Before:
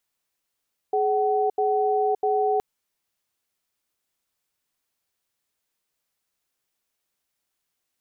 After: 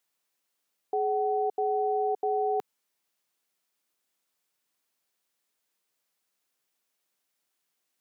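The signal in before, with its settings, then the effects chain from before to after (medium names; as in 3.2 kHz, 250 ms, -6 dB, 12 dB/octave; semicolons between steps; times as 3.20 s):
cadence 421 Hz, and 754 Hz, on 0.57 s, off 0.08 s, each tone -22 dBFS 1.67 s
peak limiter -21 dBFS; high-pass 170 Hz 12 dB/octave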